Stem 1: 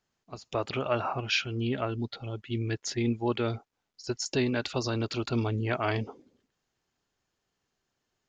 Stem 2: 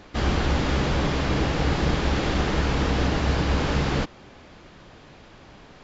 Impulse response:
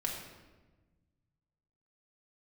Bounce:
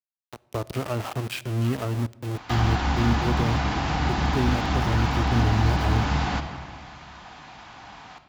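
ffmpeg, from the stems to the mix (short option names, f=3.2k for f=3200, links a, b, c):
-filter_complex "[0:a]aemphasis=mode=reproduction:type=bsi,aeval=exprs='val(0)*gte(abs(val(0)),0.0376)':c=same,volume=-1.5dB,asplit=2[a][b];[b]volume=-20dB[c];[1:a]lowshelf=f=630:t=q:w=3:g=-7,adelay=2350,volume=1dB,asplit=2[d][e];[e]volume=-4.5dB[f];[2:a]atrim=start_sample=2205[g];[c][f]amix=inputs=2:normalize=0[h];[h][g]afir=irnorm=-1:irlink=0[i];[a][d][i]amix=inputs=3:normalize=0,highpass=50,acrossover=split=410[j][k];[k]acompressor=threshold=-27dB:ratio=6[l];[j][l]amix=inputs=2:normalize=0"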